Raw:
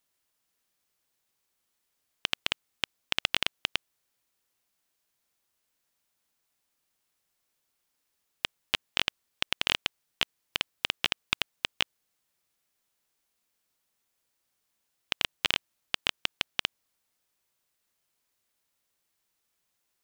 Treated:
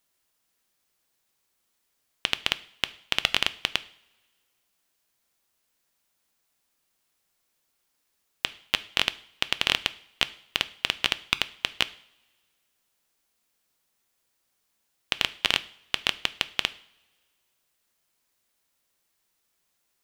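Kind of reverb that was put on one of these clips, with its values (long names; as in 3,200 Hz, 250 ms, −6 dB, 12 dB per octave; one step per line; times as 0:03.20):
coupled-rooms reverb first 0.52 s, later 1.9 s, from −21 dB, DRR 13.5 dB
level +3.5 dB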